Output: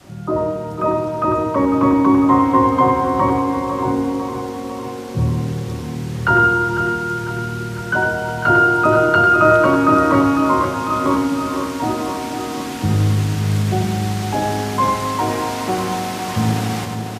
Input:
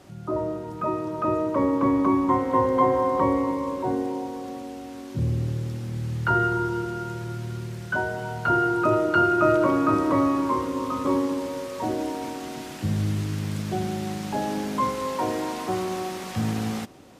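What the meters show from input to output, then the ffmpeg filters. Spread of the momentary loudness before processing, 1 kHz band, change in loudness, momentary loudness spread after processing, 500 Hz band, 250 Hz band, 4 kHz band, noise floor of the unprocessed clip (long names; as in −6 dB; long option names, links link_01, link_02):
12 LU, +9.0 dB, +8.0 dB, 11 LU, +6.0 dB, +7.0 dB, +9.5 dB, −38 dBFS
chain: -filter_complex "[0:a]asplit=2[link_01][link_02];[link_02]aecho=0:1:500|1000|1500|2000|2500|3000|3500:0.376|0.222|0.131|0.0772|0.0455|0.0269|0.0159[link_03];[link_01][link_03]amix=inputs=2:normalize=0,adynamicequalizer=threshold=0.02:dfrequency=430:dqfactor=1.3:tfrequency=430:tqfactor=1.3:attack=5:release=100:ratio=0.375:range=2:mode=cutabove:tftype=bell,asplit=2[link_04][link_05];[link_05]aecho=0:1:98:0.501[link_06];[link_04][link_06]amix=inputs=2:normalize=0,volume=7.5dB"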